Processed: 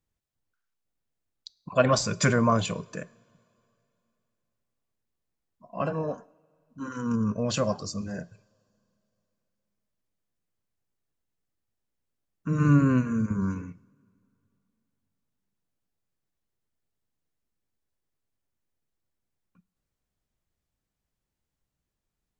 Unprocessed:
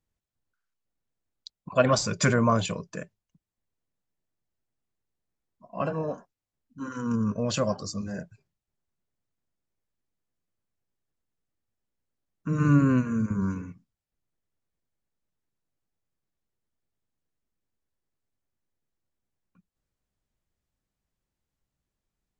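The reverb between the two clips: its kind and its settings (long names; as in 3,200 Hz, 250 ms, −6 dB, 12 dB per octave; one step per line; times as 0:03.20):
coupled-rooms reverb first 0.61 s, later 3 s, from −17 dB, DRR 19 dB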